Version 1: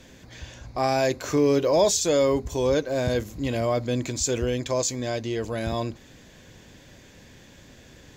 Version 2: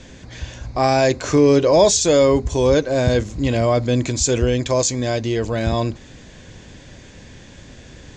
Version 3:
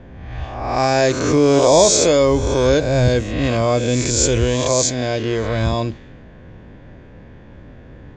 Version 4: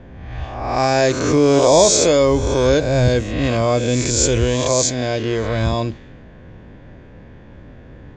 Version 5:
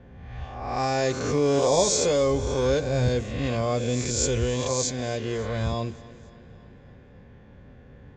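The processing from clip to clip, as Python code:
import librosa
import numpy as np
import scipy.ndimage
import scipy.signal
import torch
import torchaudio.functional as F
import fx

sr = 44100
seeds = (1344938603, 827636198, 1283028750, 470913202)

y1 = scipy.signal.sosfilt(scipy.signal.butter(6, 8500.0, 'lowpass', fs=sr, output='sos'), x)
y1 = fx.low_shelf(y1, sr, hz=110.0, db=6.0)
y1 = y1 * librosa.db_to_amplitude(6.5)
y2 = fx.spec_swells(y1, sr, rise_s=1.11)
y2 = fx.env_lowpass(y2, sr, base_hz=1200.0, full_db=-11.0)
y2 = y2 * librosa.db_to_amplitude(-1.0)
y3 = y2
y4 = fx.notch_comb(y3, sr, f0_hz=320.0)
y4 = fx.echo_feedback(y4, sr, ms=280, feedback_pct=59, wet_db=-20.0)
y4 = y4 * librosa.db_to_amplitude(-7.5)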